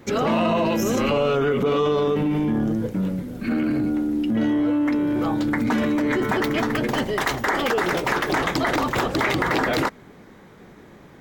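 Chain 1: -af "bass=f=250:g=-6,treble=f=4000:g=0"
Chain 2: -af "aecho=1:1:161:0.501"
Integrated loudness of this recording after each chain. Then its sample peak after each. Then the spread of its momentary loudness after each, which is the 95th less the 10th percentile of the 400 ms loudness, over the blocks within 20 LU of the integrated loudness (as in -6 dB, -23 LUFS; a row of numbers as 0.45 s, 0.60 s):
-23.5 LUFS, -21.5 LUFS; -7.5 dBFS, -7.5 dBFS; 4 LU, 6 LU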